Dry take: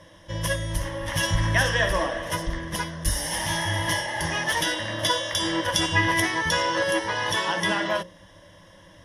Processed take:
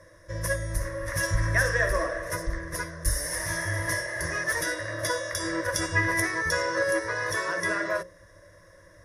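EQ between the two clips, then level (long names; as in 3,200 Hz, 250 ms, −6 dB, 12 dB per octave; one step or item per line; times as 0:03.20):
phaser with its sweep stopped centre 840 Hz, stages 6
0.0 dB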